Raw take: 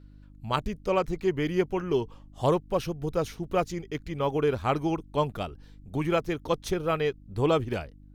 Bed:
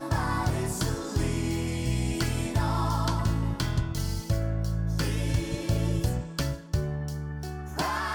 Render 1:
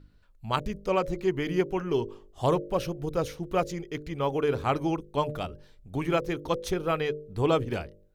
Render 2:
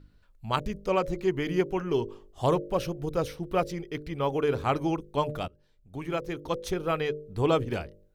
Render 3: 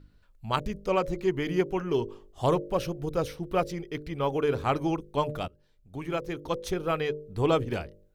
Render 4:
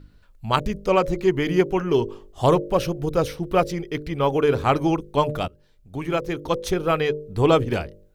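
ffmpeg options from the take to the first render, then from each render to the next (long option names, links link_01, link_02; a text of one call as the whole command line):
ffmpeg -i in.wav -af "bandreject=frequency=50:width_type=h:width=4,bandreject=frequency=100:width_type=h:width=4,bandreject=frequency=150:width_type=h:width=4,bandreject=frequency=200:width_type=h:width=4,bandreject=frequency=250:width_type=h:width=4,bandreject=frequency=300:width_type=h:width=4,bandreject=frequency=350:width_type=h:width=4,bandreject=frequency=400:width_type=h:width=4,bandreject=frequency=450:width_type=h:width=4,bandreject=frequency=500:width_type=h:width=4,bandreject=frequency=550:width_type=h:width=4,bandreject=frequency=600:width_type=h:width=4" out.wav
ffmpeg -i in.wav -filter_complex "[0:a]asettb=1/sr,asplit=3[link_01][link_02][link_03];[link_01]atrim=end=3.264[link_04];[link_02]atrim=start=3.26:end=4.26,asetpts=PTS-STARTPTS,afade=type=in:duration=0.004:curve=qsin,afade=type=out:start_time=0.996:duration=0.004:curve=qsin,bandreject=frequency=6700:width=5.2[link_05];[link_03]atrim=start=4.256[link_06];[link_04][link_05]acrossfade=duration=0.004:curve1=hsin:curve2=qsin[link_07];[link_07][link_06]acrossfade=duration=0.004:curve1=qsin:curve2=hsin,asplit=2[link_08][link_09];[link_08]atrim=end=5.48,asetpts=PTS-STARTPTS,afade=type=out:start_time=5.476:duration=0.004:curve=hsin:silence=0.11885[link_10];[link_09]atrim=start=5.48,asetpts=PTS-STARTPTS,afade=type=in:duration=1.96:curve=qsin:silence=0.11885[link_11];[link_10][link_11]concat=n=2:v=0:a=1" out.wav
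ffmpeg -i in.wav -af "aeval=exprs='0.282*(cos(1*acos(clip(val(0)/0.282,-1,1)))-cos(1*PI/2))+0.00316*(cos(6*acos(clip(val(0)/0.282,-1,1)))-cos(6*PI/2))':channel_layout=same" out.wav
ffmpeg -i in.wav -af "volume=7dB" out.wav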